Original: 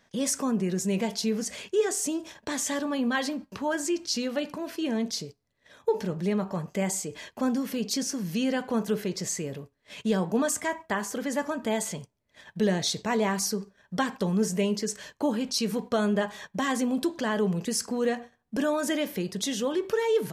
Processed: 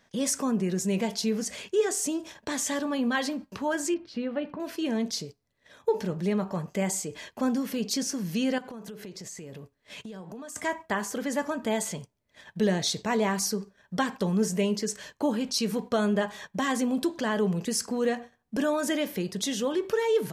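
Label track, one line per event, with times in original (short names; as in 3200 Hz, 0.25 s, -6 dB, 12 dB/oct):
3.940000	4.600000	air absorption 470 m
8.580000	10.560000	compressor 16:1, threshold -37 dBFS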